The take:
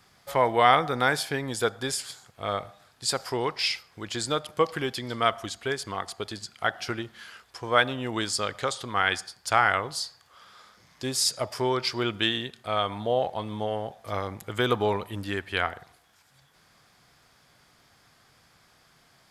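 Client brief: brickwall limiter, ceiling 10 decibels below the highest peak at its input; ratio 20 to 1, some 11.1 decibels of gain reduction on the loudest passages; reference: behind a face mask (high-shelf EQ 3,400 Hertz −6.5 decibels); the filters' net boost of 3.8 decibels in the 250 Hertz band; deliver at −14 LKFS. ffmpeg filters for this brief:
ffmpeg -i in.wav -af "equalizer=frequency=250:width_type=o:gain=5,acompressor=threshold=-25dB:ratio=20,alimiter=limit=-21dB:level=0:latency=1,highshelf=frequency=3400:gain=-6.5,volume=21dB" out.wav

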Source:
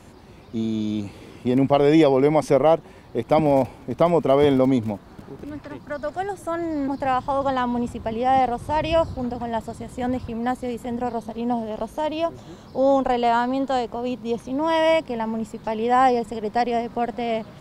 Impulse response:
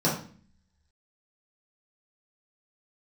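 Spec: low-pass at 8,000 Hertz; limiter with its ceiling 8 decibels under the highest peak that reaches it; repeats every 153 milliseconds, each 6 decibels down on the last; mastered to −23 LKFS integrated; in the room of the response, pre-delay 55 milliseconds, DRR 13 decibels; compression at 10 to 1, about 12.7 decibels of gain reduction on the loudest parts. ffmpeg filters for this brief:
-filter_complex "[0:a]lowpass=8000,acompressor=threshold=-25dB:ratio=10,alimiter=limit=-21.5dB:level=0:latency=1,aecho=1:1:153|306|459|612|765|918:0.501|0.251|0.125|0.0626|0.0313|0.0157,asplit=2[link_01][link_02];[1:a]atrim=start_sample=2205,adelay=55[link_03];[link_02][link_03]afir=irnorm=-1:irlink=0,volume=-26dB[link_04];[link_01][link_04]amix=inputs=2:normalize=0,volume=6.5dB"

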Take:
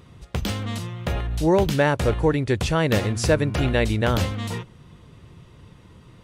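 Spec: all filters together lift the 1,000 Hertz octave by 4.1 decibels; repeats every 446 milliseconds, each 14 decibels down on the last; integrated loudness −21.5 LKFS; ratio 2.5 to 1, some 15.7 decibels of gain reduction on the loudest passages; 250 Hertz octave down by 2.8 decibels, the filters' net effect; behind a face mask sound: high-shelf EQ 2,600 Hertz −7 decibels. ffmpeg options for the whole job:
ffmpeg -i in.wav -af "equalizer=frequency=250:width_type=o:gain=-4.5,equalizer=frequency=1000:width_type=o:gain=6.5,acompressor=threshold=-38dB:ratio=2.5,highshelf=frequency=2600:gain=-7,aecho=1:1:446|892:0.2|0.0399,volume=15dB" out.wav

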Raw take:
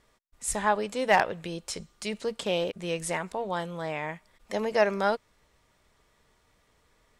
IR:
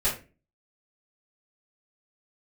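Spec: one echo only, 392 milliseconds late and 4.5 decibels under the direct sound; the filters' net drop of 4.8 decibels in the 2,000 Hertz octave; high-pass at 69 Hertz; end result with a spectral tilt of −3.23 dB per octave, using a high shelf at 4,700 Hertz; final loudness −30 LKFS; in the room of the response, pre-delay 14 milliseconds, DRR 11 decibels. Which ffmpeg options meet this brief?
-filter_complex "[0:a]highpass=69,equalizer=frequency=2000:width_type=o:gain=-7,highshelf=frequency=4700:gain=6.5,aecho=1:1:392:0.596,asplit=2[link_01][link_02];[1:a]atrim=start_sample=2205,adelay=14[link_03];[link_02][link_03]afir=irnorm=-1:irlink=0,volume=-21dB[link_04];[link_01][link_04]amix=inputs=2:normalize=0,volume=-1.5dB"

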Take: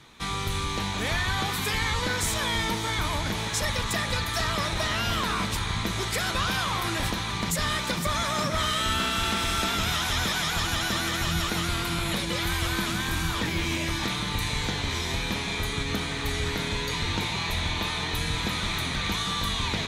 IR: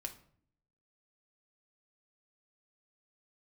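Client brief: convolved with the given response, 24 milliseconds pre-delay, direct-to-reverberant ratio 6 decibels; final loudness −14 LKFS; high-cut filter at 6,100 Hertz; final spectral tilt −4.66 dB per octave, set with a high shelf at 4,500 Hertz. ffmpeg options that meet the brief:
-filter_complex "[0:a]lowpass=6100,highshelf=frequency=4500:gain=-8,asplit=2[link_01][link_02];[1:a]atrim=start_sample=2205,adelay=24[link_03];[link_02][link_03]afir=irnorm=-1:irlink=0,volume=-3.5dB[link_04];[link_01][link_04]amix=inputs=2:normalize=0,volume=13.5dB"

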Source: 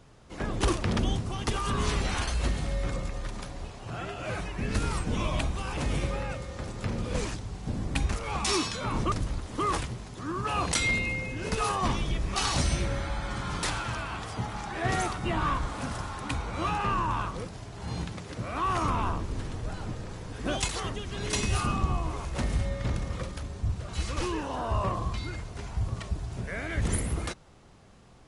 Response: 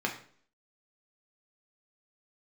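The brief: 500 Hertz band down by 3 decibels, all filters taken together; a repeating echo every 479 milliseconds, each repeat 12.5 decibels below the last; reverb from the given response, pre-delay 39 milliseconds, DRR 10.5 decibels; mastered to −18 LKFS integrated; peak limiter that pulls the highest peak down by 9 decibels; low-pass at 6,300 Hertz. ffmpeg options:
-filter_complex "[0:a]lowpass=6300,equalizer=frequency=500:width_type=o:gain=-4,alimiter=limit=-23.5dB:level=0:latency=1,aecho=1:1:479|958|1437:0.237|0.0569|0.0137,asplit=2[link_01][link_02];[1:a]atrim=start_sample=2205,adelay=39[link_03];[link_02][link_03]afir=irnorm=-1:irlink=0,volume=-18dB[link_04];[link_01][link_04]amix=inputs=2:normalize=0,volume=16dB"

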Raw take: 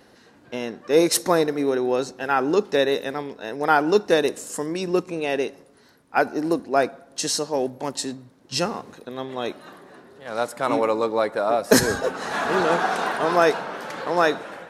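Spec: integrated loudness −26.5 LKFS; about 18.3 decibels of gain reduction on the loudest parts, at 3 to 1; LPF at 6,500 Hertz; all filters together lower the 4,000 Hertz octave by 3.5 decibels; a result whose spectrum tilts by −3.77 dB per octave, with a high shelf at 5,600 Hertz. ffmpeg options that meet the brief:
ffmpeg -i in.wav -af "lowpass=6500,equalizer=frequency=4000:width_type=o:gain=-7,highshelf=frequency=5600:gain=7.5,acompressor=threshold=-37dB:ratio=3,volume=10.5dB" out.wav

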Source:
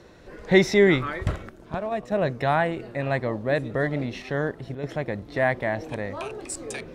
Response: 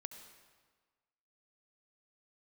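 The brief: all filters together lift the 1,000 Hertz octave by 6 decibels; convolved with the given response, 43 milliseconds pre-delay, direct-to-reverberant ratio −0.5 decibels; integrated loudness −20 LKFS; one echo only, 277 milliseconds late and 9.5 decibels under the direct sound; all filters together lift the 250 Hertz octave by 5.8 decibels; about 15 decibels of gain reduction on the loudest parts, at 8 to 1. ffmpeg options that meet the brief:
-filter_complex "[0:a]equalizer=frequency=250:width_type=o:gain=8,equalizer=frequency=1000:width_type=o:gain=8,acompressor=threshold=-24dB:ratio=8,aecho=1:1:277:0.335,asplit=2[link_01][link_02];[1:a]atrim=start_sample=2205,adelay=43[link_03];[link_02][link_03]afir=irnorm=-1:irlink=0,volume=4.5dB[link_04];[link_01][link_04]amix=inputs=2:normalize=0,volume=6dB"

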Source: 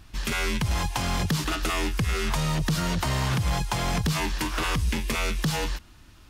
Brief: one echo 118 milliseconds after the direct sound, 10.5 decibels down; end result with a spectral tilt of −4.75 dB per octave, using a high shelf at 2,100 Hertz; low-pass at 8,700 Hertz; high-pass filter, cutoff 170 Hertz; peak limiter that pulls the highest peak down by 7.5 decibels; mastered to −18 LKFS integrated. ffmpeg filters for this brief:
ffmpeg -i in.wav -af "highpass=170,lowpass=8700,highshelf=frequency=2100:gain=-7.5,alimiter=level_in=1.5dB:limit=-24dB:level=0:latency=1,volume=-1.5dB,aecho=1:1:118:0.299,volume=16.5dB" out.wav

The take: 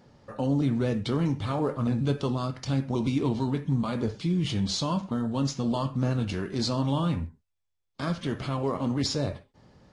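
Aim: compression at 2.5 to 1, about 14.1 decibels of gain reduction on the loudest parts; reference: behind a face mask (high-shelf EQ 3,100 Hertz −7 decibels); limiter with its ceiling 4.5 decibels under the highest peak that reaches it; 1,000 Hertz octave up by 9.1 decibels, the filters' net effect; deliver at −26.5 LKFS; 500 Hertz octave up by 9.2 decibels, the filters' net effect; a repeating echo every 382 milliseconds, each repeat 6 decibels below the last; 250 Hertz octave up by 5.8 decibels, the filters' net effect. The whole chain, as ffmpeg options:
ffmpeg -i in.wav -af "equalizer=frequency=250:width_type=o:gain=4.5,equalizer=frequency=500:width_type=o:gain=8,equalizer=frequency=1000:width_type=o:gain=9,acompressor=threshold=-38dB:ratio=2.5,alimiter=level_in=2.5dB:limit=-24dB:level=0:latency=1,volume=-2.5dB,highshelf=frequency=3100:gain=-7,aecho=1:1:382|764|1146|1528|1910|2292:0.501|0.251|0.125|0.0626|0.0313|0.0157,volume=9.5dB" out.wav

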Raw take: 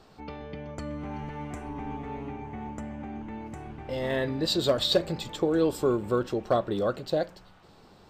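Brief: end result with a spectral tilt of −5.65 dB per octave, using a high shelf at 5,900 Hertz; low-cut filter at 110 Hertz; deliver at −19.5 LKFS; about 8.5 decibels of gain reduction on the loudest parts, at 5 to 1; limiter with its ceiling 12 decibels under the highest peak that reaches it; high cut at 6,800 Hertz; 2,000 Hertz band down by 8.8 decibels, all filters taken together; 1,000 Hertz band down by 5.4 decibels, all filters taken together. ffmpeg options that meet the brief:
ffmpeg -i in.wav -af "highpass=110,lowpass=6800,equalizer=frequency=1000:width_type=o:gain=-5.5,equalizer=frequency=2000:width_type=o:gain=-9,highshelf=frequency=5900:gain=-4.5,acompressor=threshold=-30dB:ratio=5,volume=20.5dB,alimiter=limit=-10dB:level=0:latency=1" out.wav

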